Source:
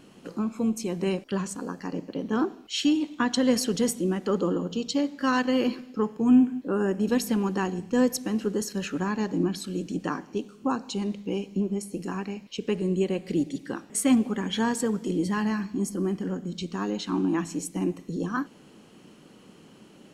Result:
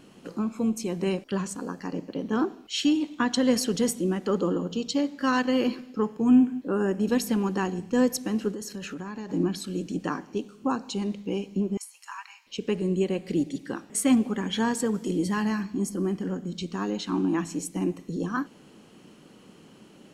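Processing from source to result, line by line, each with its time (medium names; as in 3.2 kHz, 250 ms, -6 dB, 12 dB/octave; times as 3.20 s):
8.51–9.30 s: compression, threshold -32 dBFS
11.77–12.47 s: Chebyshev high-pass 920 Hz, order 5
14.94–15.63 s: treble shelf 6.3 kHz +5 dB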